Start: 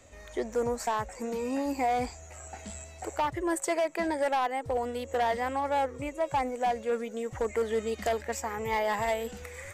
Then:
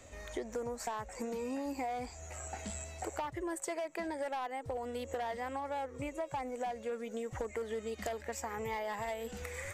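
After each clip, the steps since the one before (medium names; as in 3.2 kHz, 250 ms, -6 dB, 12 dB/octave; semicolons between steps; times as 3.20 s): compression 6:1, threshold -37 dBFS, peak gain reduction 12 dB; trim +1 dB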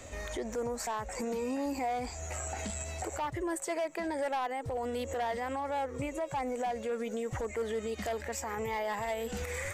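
peak limiter -35 dBFS, peak gain reduction 9 dB; trim +7.5 dB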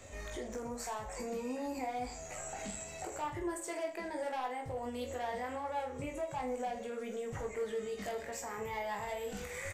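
reverse bouncing-ball echo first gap 20 ms, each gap 1.3×, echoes 5; trim -6.5 dB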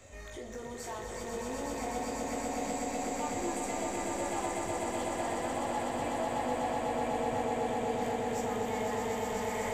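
echo with a slow build-up 124 ms, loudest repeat 8, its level -4.5 dB; trim -2 dB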